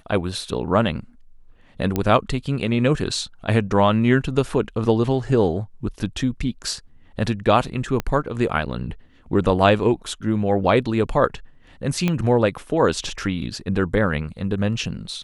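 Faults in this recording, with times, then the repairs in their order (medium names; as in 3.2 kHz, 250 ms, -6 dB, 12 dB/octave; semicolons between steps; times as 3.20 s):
1.96 s: pop -8 dBFS
8.00 s: pop -11 dBFS
12.08 s: pop -9 dBFS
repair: de-click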